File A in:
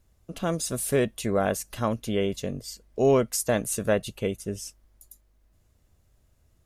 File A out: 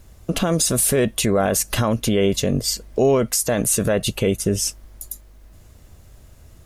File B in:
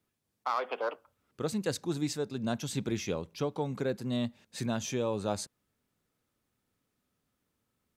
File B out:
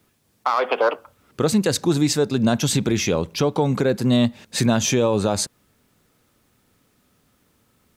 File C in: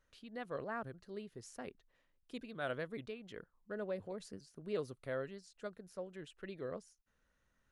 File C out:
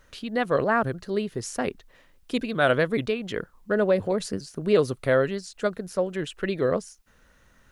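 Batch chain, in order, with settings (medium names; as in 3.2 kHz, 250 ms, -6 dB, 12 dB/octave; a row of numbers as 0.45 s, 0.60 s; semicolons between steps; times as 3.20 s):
in parallel at 0 dB: compression, threshold -35 dBFS; on the sum: peak limiter -20.5 dBFS; peak normalisation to -9 dBFS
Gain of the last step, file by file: +11.5 dB, +11.5 dB, +13.5 dB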